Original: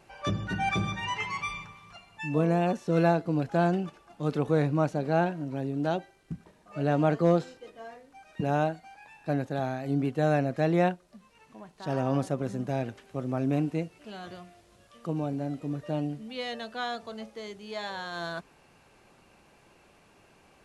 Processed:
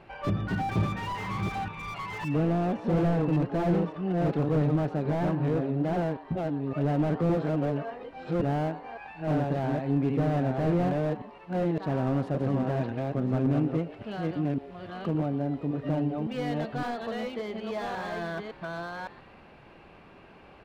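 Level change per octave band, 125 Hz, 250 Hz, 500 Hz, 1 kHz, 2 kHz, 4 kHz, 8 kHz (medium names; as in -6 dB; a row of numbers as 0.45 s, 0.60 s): +3.0 dB, +2.5 dB, -0.5 dB, -1.0 dB, -2.5 dB, -4.5 dB, no reading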